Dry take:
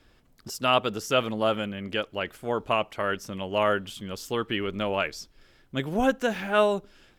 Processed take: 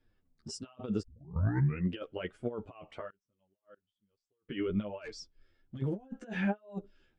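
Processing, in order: negative-ratio compressor -31 dBFS, ratio -0.5; 1.02 tape start 0.90 s; flange 1.2 Hz, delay 7.7 ms, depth 6 ms, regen +6%; 3.1–4.49 flipped gate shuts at -34 dBFS, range -29 dB; 4.99–5.82 hard clip -34.5 dBFS, distortion -20 dB; downsampling 22050 Hz; spectral expander 1.5:1

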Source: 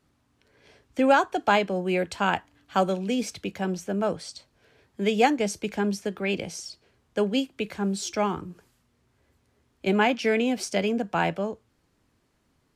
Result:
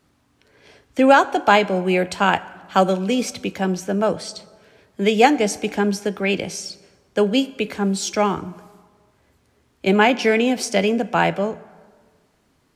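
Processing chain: low shelf 140 Hz -4 dB; plate-style reverb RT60 1.6 s, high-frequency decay 0.6×, DRR 17 dB; gain +7 dB

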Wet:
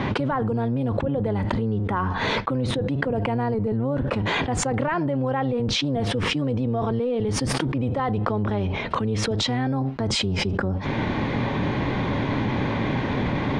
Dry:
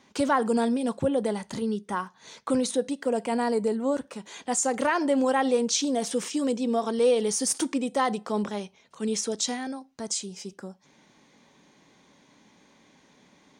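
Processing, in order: octaver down 1 oct, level 0 dB; air absorption 420 m; fast leveller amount 100%; gain -5 dB

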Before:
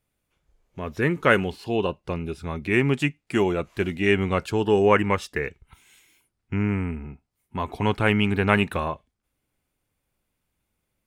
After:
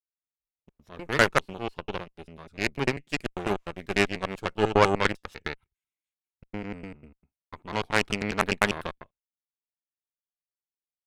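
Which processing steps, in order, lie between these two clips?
slices in reverse order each 99 ms, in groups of 2; added harmonics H 3 -24 dB, 6 -20 dB, 7 -20 dB, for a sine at -3.5 dBFS; gate with hold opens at -54 dBFS

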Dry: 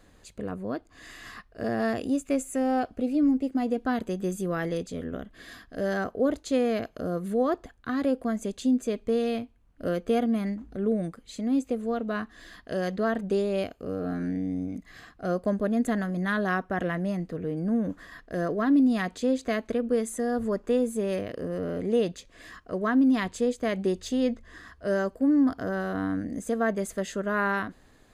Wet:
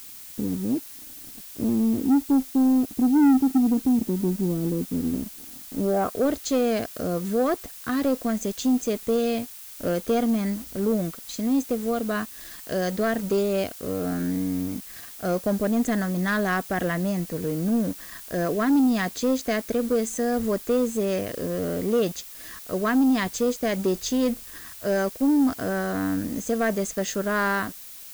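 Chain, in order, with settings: low-pass sweep 280 Hz -> 6400 Hz, 5.83–6.33; sample leveller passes 2; added noise blue -38 dBFS; gain -4 dB

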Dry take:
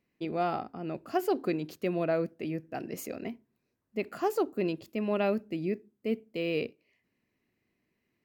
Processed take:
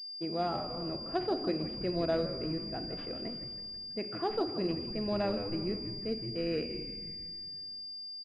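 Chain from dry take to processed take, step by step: frequency-shifting echo 0.163 s, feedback 59%, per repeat -100 Hz, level -10 dB; shoebox room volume 1200 m³, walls mixed, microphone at 0.69 m; pulse-width modulation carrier 4800 Hz; gain -4 dB

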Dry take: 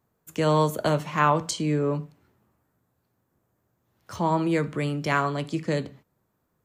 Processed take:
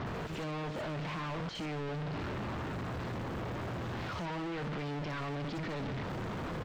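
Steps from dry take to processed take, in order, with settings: infinite clipping; air absorption 170 m; bands offset in time lows, highs 60 ms, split 6000 Hz; gain -9 dB

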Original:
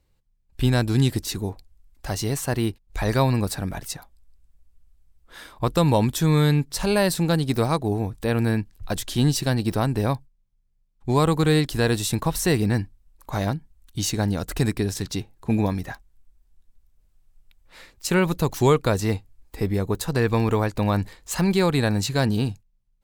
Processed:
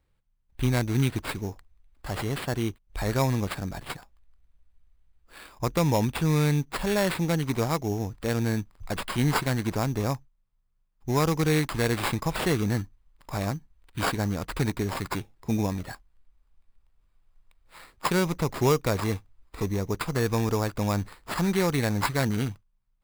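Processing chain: bell 5000 Hz +6 dB 0.28 oct, from 7.45 s +14 dB; sample-rate reducer 6100 Hz, jitter 0%; gain -4.5 dB

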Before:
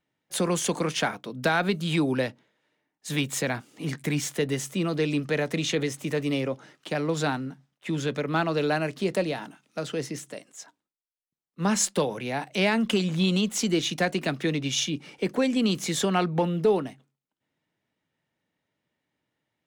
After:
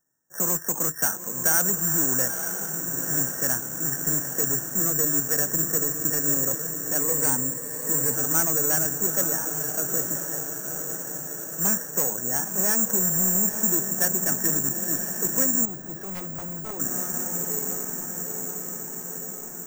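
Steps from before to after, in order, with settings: rattling part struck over -28 dBFS, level -20 dBFS; brick-wall FIR band-stop 1900–12000 Hz; in parallel at -4 dB: wavefolder -25.5 dBFS; on the sum: bell 1600 Hz +6 dB 0.47 oct; on a send: diffused feedback echo 0.93 s, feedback 68%, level -7 dB; on the sum: careless resampling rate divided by 6×, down filtered, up zero stuff; 7–8.15 ripple EQ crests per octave 0.96, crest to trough 8 dB; 15.65–16.8 de-esser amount 95%; gain -8 dB

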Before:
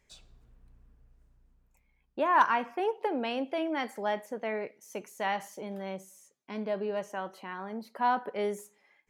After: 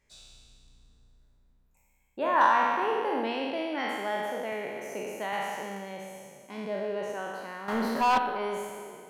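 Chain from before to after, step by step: spectral trails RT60 2.00 s; 7.68–8.18 sample leveller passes 3; spring tank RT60 1.4 s, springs 35/56 ms, chirp 75 ms, DRR 11.5 dB; 4.52–5.33 three-band squash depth 70%; gain -3.5 dB

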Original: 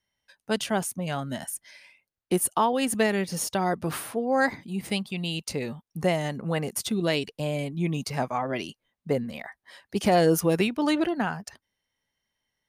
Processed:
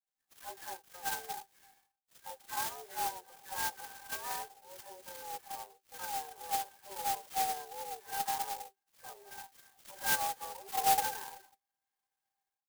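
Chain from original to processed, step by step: spectral delay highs early, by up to 0.454 s; AGC gain up to 16.5 dB; harmoniser -5 st -10 dB, +7 st -16 dB, +12 st -5 dB; compressor 2:1, threshold -19 dBFS, peak gain reduction 8 dB; harmonic-percussive split percussive -14 dB; mistuned SSB +170 Hz 480–2900 Hz; octave resonator G, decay 0.1 s; clock jitter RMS 0.11 ms

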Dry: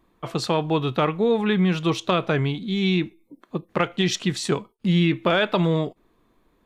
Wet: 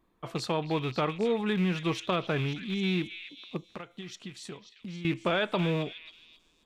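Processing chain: rattling part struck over -26 dBFS, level -23 dBFS; 3.68–5.05 compressor 5:1, threshold -33 dBFS, peak gain reduction 15 dB; delay with a stepping band-pass 0.269 s, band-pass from 2600 Hz, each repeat 0.7 oct, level -6.5 dB; gain -7.5 dB

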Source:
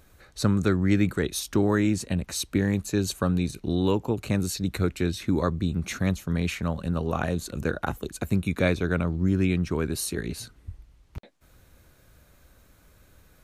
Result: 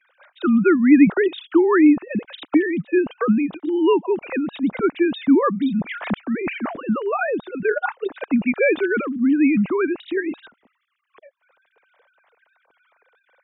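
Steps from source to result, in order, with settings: sine-wave speech; gain +6.5 dB

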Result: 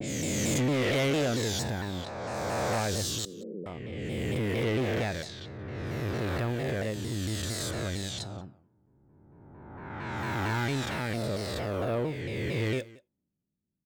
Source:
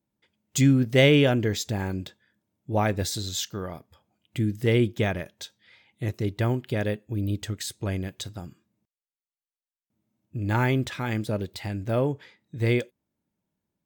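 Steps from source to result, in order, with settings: spectral swells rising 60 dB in 2.69 s; soft clip -18 dBFS, distortion -11 dB; low-pass opened by the level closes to 300 Hz, open at -25 dBFS; 3.25–3.66 Chebyshev band-pass 180–510 Hz, order 4; on a send: echo 0.18 s -21.5 dB; on the sum: shaped vibrato saw down 4.4 Hz, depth 160 cents; gain -5.5 dB

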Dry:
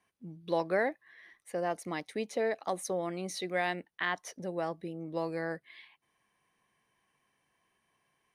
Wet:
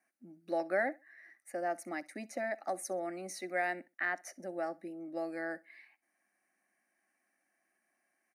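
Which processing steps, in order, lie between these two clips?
HPF 240 Hz 12 dB/oct; fixed phaser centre 670 Hz, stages 8; feedback echo 64 ms, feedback 24%, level -23 dB

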